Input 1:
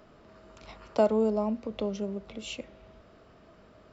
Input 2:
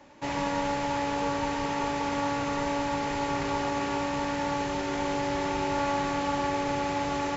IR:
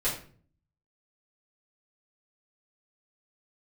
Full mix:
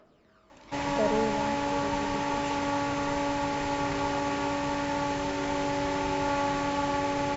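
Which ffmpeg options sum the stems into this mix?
-filter_complex "[0:a]aphaser=in_gain=1:out_gain=1:delay=1.1:decay=0.49:speed=0.88:type=triangular,lowshelf=f=180:g=-10,volume=0.501[s0];[1:a]adelay=500,volume=1[s1];[s0][s1]amix=inputs=2:normalize=0"

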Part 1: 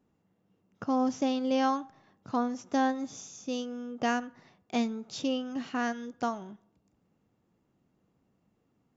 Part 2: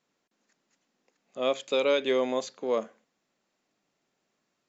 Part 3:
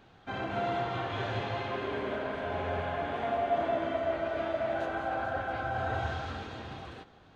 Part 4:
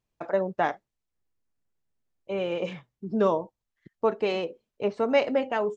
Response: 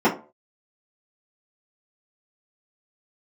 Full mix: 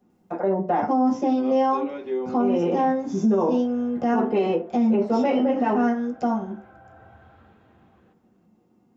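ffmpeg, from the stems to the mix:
-filter_complex "[0:a]highshelf=f=4900:g=6,volume=1.12,asplit=2[s0][s1];[s1]volume=0.168[s2];[1:a]volume=0.422,asplit=2[s3][s4];[s4]volume=0.0891[s5];[2:a]adelay=1100,volume=0.168[s6];[3:a]highshelf=f=4500:g=9,adelay=100,volume=1,asplit=2[s7][s8];[s8]volume=0.15[s9];[s3][s6]amix=inputs=2:normalize=0,lowpass=2100,acompressor=threshold=0.00562:ratio=6,volume=1[s10];[s0][s7]amix=inputs=2:normalize=0,acrossover=split=300[s11][s12];[s12]acompressor=threshold=0.00631:ratio=2.5[s13];[s11][s13]amix=inputs=2:normalize=0,alimiter=level_in=1.88:limit=0.0631:level=0:latency=1,volume=0.531,volume=1[s14];[4:a]atrim=start_sample=2205[s15];[s2][s5][s9]amix=inputs=3:normalize=0[s16];[s16][s15]afir=irnorm=-1:irlink=0[s17];[s10][s14][s17]amix=inputs=3:normalize=0,alimiter=limit=0.211:level=0:latency=1:release=49"

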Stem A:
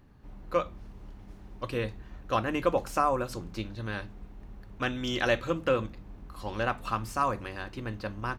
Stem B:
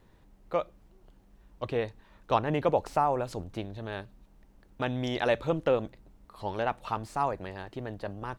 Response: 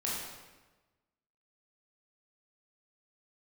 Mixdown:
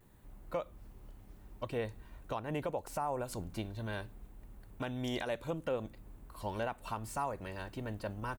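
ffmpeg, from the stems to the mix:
-filter_complex "[0:a]volume=0.398[s0];[1:a]aexciter=amount=4.8:drive=4.2:freq=7200,volume=-1,adelay=5.6,volume=0.562,asplit=2[s1][s2];[s2]apad=whole_len=369560[s3];[s0][s3]sidechaincompress=threshold=0.0126:ratio=8:attack=16:release=165[s4];[s4][s1]amix=inputs=2:normalize=0,alimiter=level_in=1.19:limit=0.0631:level=0:latency=1:release=316,volume=0.841"

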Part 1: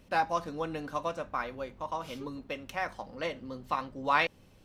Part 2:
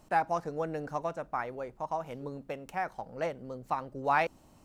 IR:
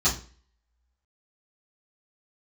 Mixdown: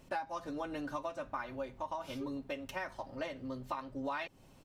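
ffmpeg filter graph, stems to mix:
-filter_complex "[0:a]aecho=1:1:7.5:0.53,volume=0.668[s0];[1:a]volume=0.596[s1];[s0][s1]amix=inputs=2:normalize=0,acompressor=threshold=0.0178:ratio=8"

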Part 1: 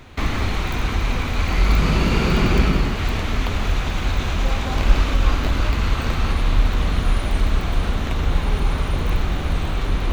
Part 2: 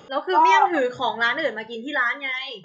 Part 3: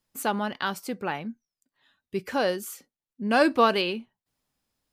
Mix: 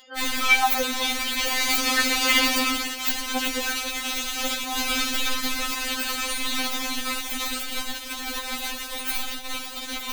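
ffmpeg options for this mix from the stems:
-filter_complex "[0:a]crystalizer=i=9.5:c=0,aeval=exprs='sgn(val(0))*max(abs(val(0))-0.0944,0)':c=same,volume=0.75[s0];[1:a]tiltshelf=f=870:g=-9,volume=0.596[s1];[2:a]volume=0.447[s2];[s0][s1][s2]amix=inputs=3:normalize=0,agate=range=0.0224:threshold=0.0708:ratio=3:detection=peak,acompressor=mode=upward:threshold=0.0501:ratio=2.5,afftfilt=real='re*3.46*eq(mod(b,12),0)':imag='im*3.46*eq(mod(b,12),0)':win_size=2048:overlap=0.75"

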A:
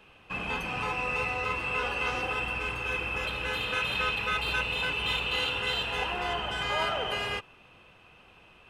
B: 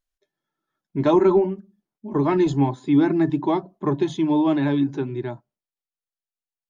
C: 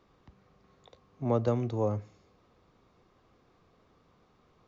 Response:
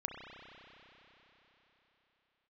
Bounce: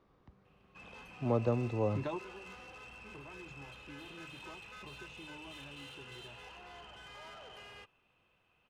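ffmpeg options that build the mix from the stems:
-filter_complex "[0:a]asoftclip=type=tanh:threshold=0.0355,adelay=450,volume=0.133[s0];[1:a]equalizer=f=280:w=1.5:g=-8,acompressor=threshold=0.0316:ratio=6,adelay=1000,volume=0.501[s1];[2:a]lowpass=f=2500:p=1,volume=0.708,asplit=2[s2][s3];[s3]apad=whole_len=339275[s4];[s1][s4]sidechaingate=range=0.2:threshold=0.00141:ratio=16:detection=peak[s5];[s0][s5][s2]amix=inputs=3:normalize=0"

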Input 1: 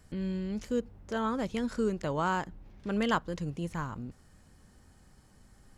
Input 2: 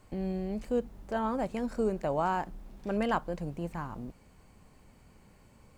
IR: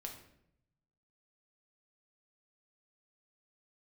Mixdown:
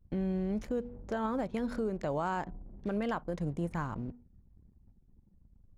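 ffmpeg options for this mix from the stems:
-filter_complex "[0:a]bandreject=f=242.3:t=h:w=4,bandreject=f=484.6:t=h:w=4,bandreject=f=726.9:t=h:w=4,bandreject=f=969.2:t=h:w=4,acompressor=threshold=0.0224:ratio=4,volume=0.794[s0];[1:a]volume=0.668[s1];[s0][s1]amix=inputs=2:normalize=0,anlmdn=0.00158,alimiter=limit=0.0631:level=0:latency=1:release=153"

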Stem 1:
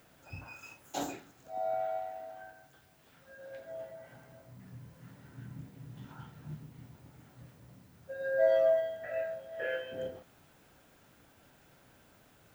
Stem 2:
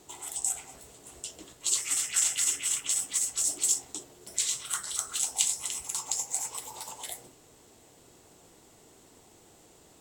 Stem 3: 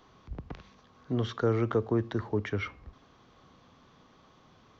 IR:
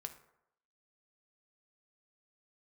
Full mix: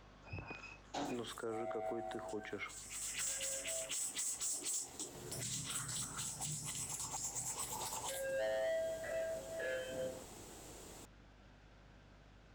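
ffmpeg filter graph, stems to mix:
-filter_complex "[0:a]lowpass=f=6000:w=0.5412,lowpass=f=6000:w=1.3066,asoftclip=type=tanh:threshold=0.0299,aeval=exprs='val(0)+0.001*(sin(2*PI*50*n/s)+sin(2*PI*2*50*n/s)/2+sin(2*PI*3*50*n/s)/3+sin(2*PI*4*50*n/s)/4+sin(2*PI*5*50*n/s)/5)':c=same,volume=0.794,asplit=3[s0][s1][s2];[s0]atrim=end=3.9,asetpts=PTS-STARTPTS,afade=t=out:st=3.896:d=0.004:c=hsin[s3];[s1]atrim=start=3.9:end=5.14,asetpts=PTS-STARTPTS,volume=0[s4];[s2]atrim=start=5.14,asetpts=PTS-STARTPTS,afade=t=in:d=0.004:c=hsin[s5];[s3][s4][s5]concat=n=3:v=0:a=1[s6];[1:a]acompressor=threshold=0.00891:ratio=1.5,alimiter=level_in=1.41:limit=0.0631:level=0:latency=1:release=184,volume=0.708,asoftclip=type=tanh:threshold=0.015,adelay=1050,volume=1.41[s7];[2:a]highpass=270,volume=0.501,asplit=2[s8][s9];[s9]apad=whole_len=487382[s10];[s7][s10]sidechaincompress=threshold=0.00316:ratio=8:attack=16:release=627[s11];[s6][s11][s8]amix=inputs=3:normalize=0,alimiter=level_in=3.16:limit=0.0631:level=0:latency=1:release=120,volume=0.316"

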